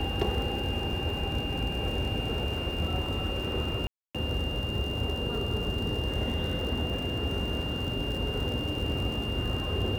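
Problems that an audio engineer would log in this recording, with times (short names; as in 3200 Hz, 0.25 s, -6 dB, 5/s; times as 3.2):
crackle 77/s -34 dBFS
tone 2800 Hz -35 dBFS
3.87–4.15 gap 0.276 s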